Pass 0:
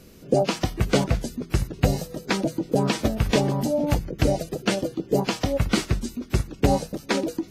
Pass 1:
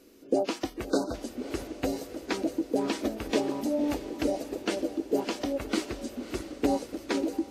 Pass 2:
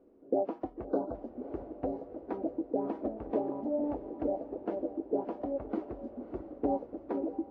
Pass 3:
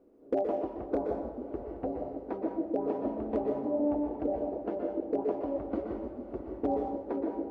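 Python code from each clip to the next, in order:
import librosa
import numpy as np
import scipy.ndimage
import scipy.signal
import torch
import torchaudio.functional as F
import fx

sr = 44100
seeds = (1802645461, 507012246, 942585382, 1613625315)

y1 = fx.low_shelf_res(x, sr, hz=210.0, db=-10.0, q=3.0)
y1 = fx.echo_diffused(y1, sr, ms=595, feedback_pct=54, wet_db=-12.0)
y1 = fx.spec_erase(y1, sr, start_s=0.9, length_s=0.24, low_hz=1600.0, high_hz=3600.0)
y1 = y1 * librosa.db_to_amplitude(-8.0)
y2 = fx.lowpass_res(y1, sr, hz=760.0, q=1.7)
y2 = y2 * librosa.db_to_amplitude(-6.5)
y3 = np.clip(y2, -10.0 ** (-20.5 / 20.0), 10.0 ** (-20.5 / 20.0))
y3 = fx.rev_plate(y3, sr, seeds[0], rt60_s=0.77, hf_ratio=0.95, predelay_ms=110, drr_db=2.0)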